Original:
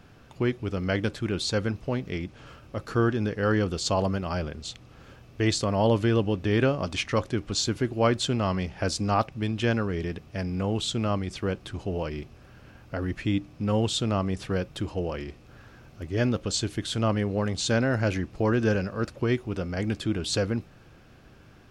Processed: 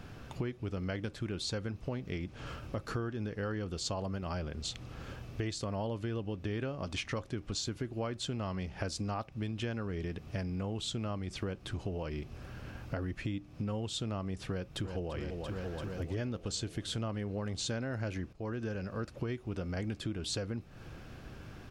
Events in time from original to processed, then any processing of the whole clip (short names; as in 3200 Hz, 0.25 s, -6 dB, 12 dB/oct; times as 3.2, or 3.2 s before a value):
14.48–15.16 echo throw 0.34 s, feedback 75%, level -10.5 dB
18.33–19.69 fade in, from -18.5 dB
whole clip: low shelf 120 Hz +4 dB; compressor 8:1, threshold -37 dBFS; gain +3 dB